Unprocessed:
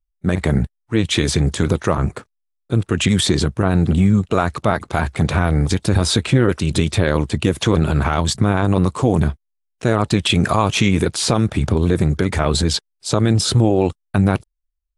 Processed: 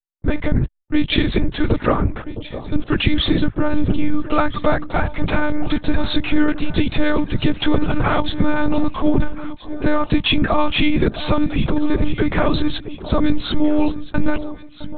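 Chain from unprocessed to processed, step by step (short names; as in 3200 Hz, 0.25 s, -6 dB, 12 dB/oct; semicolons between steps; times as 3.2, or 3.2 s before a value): reverse; upward compressor, threshold -25 dBFS; reverse; gate -40 dBFS, range -24 dB; monotone LPC vocoder at 8 kHz 300 Hz; echo with dull and thin repeats by turns 0.662 s, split 910 Hz, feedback 56%, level -12 dB; gain +1 dB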